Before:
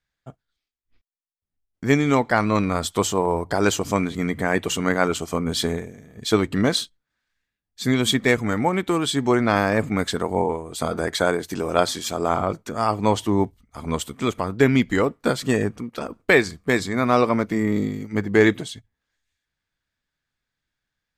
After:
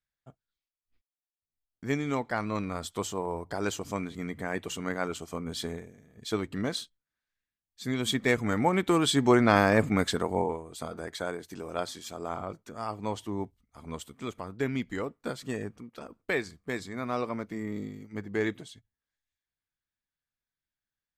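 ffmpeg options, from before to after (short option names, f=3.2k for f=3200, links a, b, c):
-af "volume=-2dB,afade=t=in:st=7.87:d=1.14:silence=0.334965,afade=t=out:st=9.83:d=1.07:silence=0.266073"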